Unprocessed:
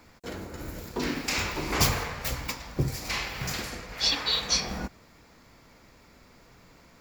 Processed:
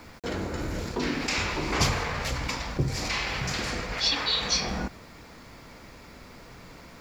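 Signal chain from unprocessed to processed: low-pass 6.7 kHz 12 dB/octave; in parallel at -2 dB: compressor with a negative ratio -39 dBFS; on the sum: bit crusher 10-bit

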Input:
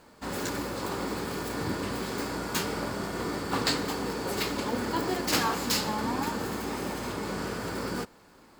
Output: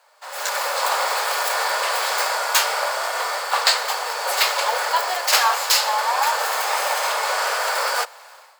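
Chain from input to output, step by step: steep high-pass 560 Hz 48 dB/octave; level rider gain up to 16 dB

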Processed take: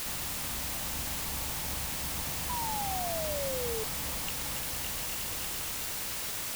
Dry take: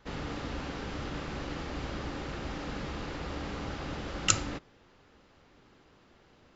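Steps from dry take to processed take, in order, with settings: echo whose repeats swap between lows and highs 140 ms, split 830 Hz, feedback 77%, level -8 dB; compression, threshold -38 dBFS, peak gain reduction 19 dB; static phaser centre 1.5 kHz, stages 6; echo with a slow build-up 116 ms, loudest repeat 5, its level -8.5 dB; painted sound fall, 2.49–3.84 s, 430–1000 Hz -36 dBFS; word length cut 6-bit, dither triangular

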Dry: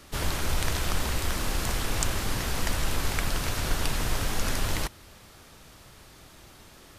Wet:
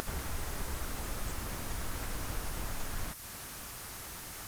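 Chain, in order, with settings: pre-emphasis filter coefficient 0.8; plain phase-vocoder stretch 0.64×; static phaser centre 1.3 kHz, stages 4; compression, threshold -45 dBFS, peak gain reduction 10 dB; band-stop 7.5 kHz, Q 25; upward compressor, threshold -50 dBFS; treble shelf 4.6 kHz +8 dB; slew-rate limiter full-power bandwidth 7.6 Hz; trim +15 dB

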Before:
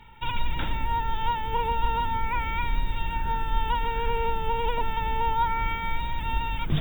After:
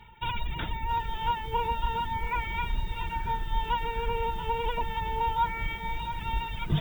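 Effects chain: reverb removal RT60 1 s; comb of notches 270 Hz; bit-crushed delay 676 ms, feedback 35%, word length 8-bit, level -12 dB

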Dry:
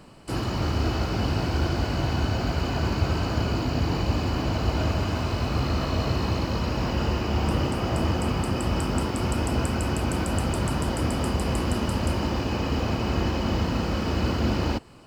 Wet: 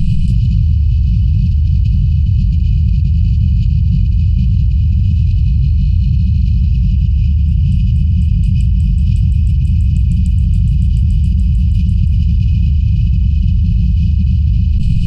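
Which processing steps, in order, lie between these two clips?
tilt EQ -4.5 dB/octave; FFT band-reject 200–2400 Hz; level flattener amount 100%; trim -7.5 dB

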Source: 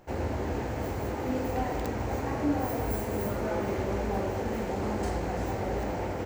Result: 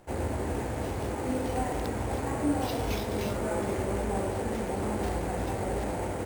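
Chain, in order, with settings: sample-and-hold 5×

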